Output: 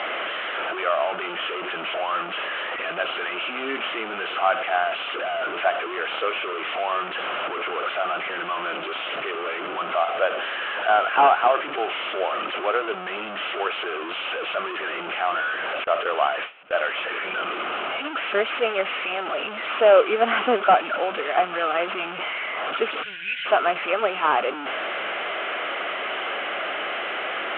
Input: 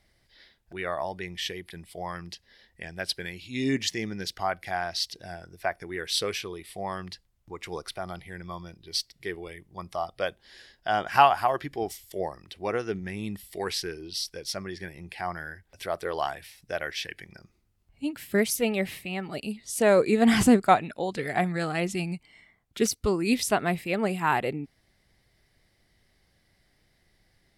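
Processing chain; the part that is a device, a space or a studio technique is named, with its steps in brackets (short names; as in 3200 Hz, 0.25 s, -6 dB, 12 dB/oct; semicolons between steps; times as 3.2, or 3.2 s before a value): digital answering machine (BPF 360–3100 Hz; delta modulation 16 kbps, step -28 dBFS; speaker cabinet 500–3200 Hz, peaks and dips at 630 Hz +3 dB, 920 Hz -5 dB, 1300 Hz +7 dB, 1900 Hz -8 dB, 3000 Hz +5 dB); 15.84–16.8 gate with hold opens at -25 dBFS; 23.03–23.46 spectral gain 200–1400 Hz -26 dB; gain +8 dB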